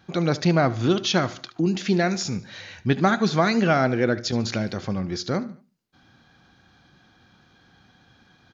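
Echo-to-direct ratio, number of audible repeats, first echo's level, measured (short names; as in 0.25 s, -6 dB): -17.0 dB, 3, -18.0 dB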